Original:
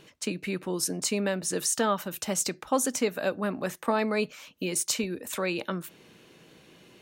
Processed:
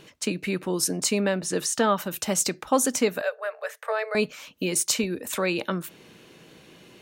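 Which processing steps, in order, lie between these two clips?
0:01.21–0:01.97: high-shelf EQ 8,100 Hz −9.5 dB
0:03.21–0:04.15: Chebyshev high-pass with heavy ripple 430 Hz, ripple 9 dB
level +4 dB

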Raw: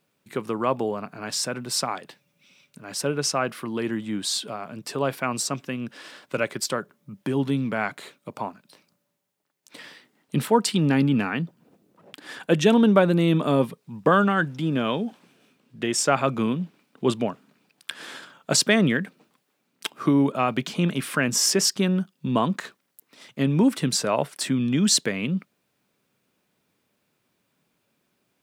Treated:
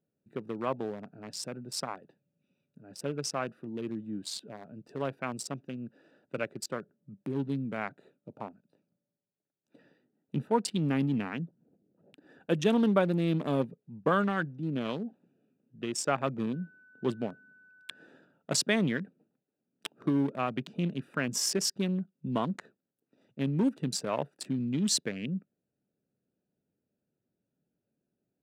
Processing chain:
adaptive Wiener filter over 41 samples
0:16.52–0:18.06: steady tone 1,500 Hz −49 dBFS
level −7.5 dB

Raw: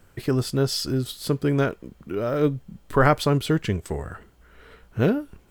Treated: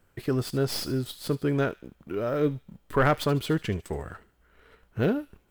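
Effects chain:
stylus tracing distortion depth 0.048 ms
high-shelf EQ 8,400 Hz +7.5 dB
leveller curve on the samples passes 1
bass and treble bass −2 dB, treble −6 dB
delay with a high-pass on its return 74 ms, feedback 42%, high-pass 2,700 Hz, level −14 dB
level −6.5 dB

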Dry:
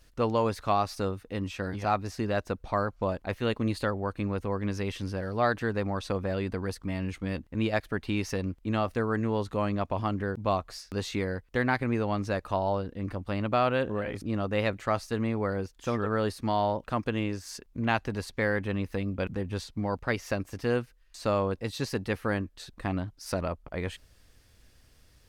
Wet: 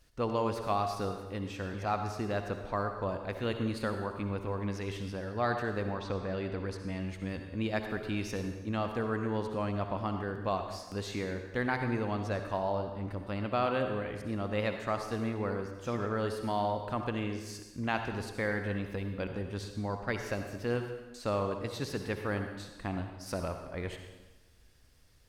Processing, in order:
0:05.85–0:06.98: low-pass filter 4,700 Hz → 9,000 Hz 12 dB per octave
on a send: convolution reverb RT60 1.1 s, pre-delay 52 ms, DRR 5.5 dB
on the sum: level −5 dB

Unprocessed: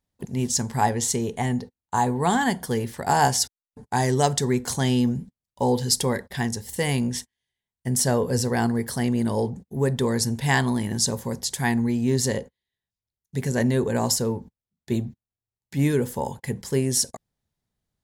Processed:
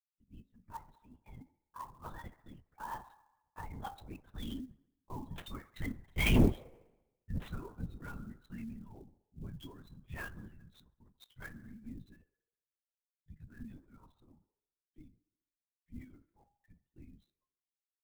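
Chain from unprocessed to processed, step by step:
spectral dynamics exaggerated over time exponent 2
source passing by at 0:06.42, 31 m/s, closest 3.1 metres
drawn EQ curve 290 Hz 0 dB, 550 Hz −22 dB, 830 Hz +2 dB
transient designer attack +3 dB, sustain −4 dB
in parallel at −2 dB: downward compressor, threshold −57 dBFS, peak gain reduction 27.5 dB
on the sum: asymmetric clip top −41 dBFS, bottom −25.5 dBFS
delay with a band-pass on its return 68 ms, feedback 61%, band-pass 840 Hz, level −15 dB
convolution reverb RT60 0.30 s, pre-delay 3 ms, DRR 8 dB
linear-prediction vocoder at 8 kHz whisper
converter with an unsteady clock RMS 0.02 ms
level +7.5 dB

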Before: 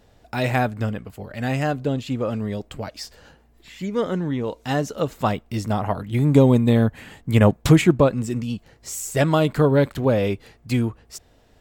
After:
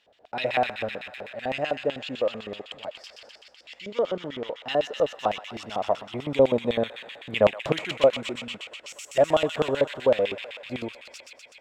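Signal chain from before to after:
delay with a high-pass on its return 119 ms, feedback 79%, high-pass 1,700 Hz, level −4.5 dB
auto-filter band-pass square 7.9 Hz 600–2,900 Hz
level +4 dB

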